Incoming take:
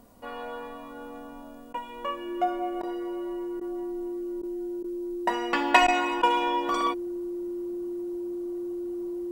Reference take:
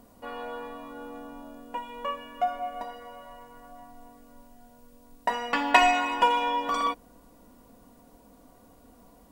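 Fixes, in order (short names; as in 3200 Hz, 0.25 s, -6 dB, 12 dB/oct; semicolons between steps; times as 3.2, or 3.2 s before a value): notch 350 Hz, Q 30; interpolate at 1.73/2.82/3.6/4.42/4.83/5.87/6.22, 10 ms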